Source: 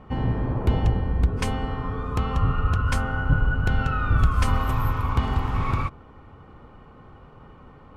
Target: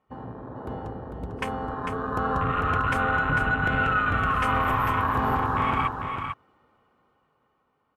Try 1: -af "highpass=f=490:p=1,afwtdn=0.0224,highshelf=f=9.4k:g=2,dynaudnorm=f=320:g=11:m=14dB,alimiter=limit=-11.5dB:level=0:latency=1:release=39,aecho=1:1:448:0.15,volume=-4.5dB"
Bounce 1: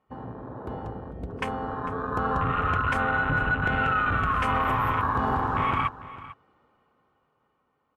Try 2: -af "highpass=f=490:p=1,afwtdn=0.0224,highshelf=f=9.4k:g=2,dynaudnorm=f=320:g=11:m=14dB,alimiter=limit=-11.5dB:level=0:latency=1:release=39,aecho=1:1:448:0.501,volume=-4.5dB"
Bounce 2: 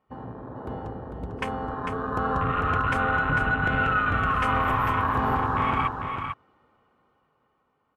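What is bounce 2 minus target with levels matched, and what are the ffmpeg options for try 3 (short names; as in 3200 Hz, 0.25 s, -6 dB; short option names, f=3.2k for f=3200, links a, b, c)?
8000 Hz band -3.0 dB
-af "highpass=f=490:p=1,afwtdn=0.0224,highshelf=f=9.4k:g=10.5,dynaudnorm=f=320:g=11:m=14dB,alimiter=limit=-11.5dB:level=0:latency=1:release=39,aecho=1:1:448:0.501,volume=-4.5dB"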